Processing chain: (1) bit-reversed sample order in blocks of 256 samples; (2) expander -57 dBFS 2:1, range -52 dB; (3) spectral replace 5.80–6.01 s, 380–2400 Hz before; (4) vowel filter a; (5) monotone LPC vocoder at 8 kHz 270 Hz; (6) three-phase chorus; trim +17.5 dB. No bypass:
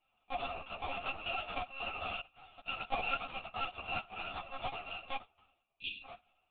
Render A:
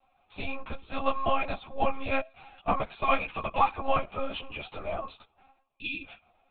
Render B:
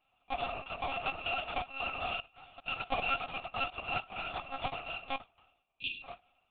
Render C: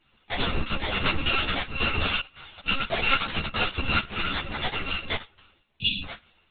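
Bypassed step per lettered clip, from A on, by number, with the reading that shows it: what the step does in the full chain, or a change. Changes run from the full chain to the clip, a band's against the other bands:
1, 4 kHz band -11.0 dB; 6, crest factor change -1.5 dB; 4, 1 kHz band -8.5 dB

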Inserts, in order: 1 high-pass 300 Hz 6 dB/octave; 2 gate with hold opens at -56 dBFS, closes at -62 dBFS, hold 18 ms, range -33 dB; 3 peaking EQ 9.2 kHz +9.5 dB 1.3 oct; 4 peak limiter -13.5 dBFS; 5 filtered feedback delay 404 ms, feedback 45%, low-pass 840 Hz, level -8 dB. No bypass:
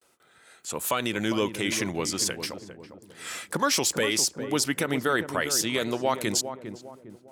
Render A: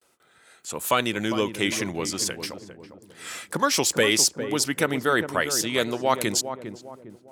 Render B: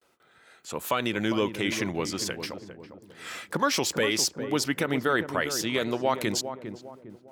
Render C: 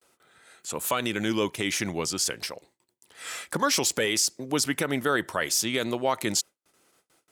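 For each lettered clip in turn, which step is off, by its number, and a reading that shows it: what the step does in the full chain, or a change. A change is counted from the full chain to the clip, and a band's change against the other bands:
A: 4, crest factor change +2.5 dB; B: 3, 8 kHz band -5.0 dB; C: 5, echo-to-direct -13.0 dB to none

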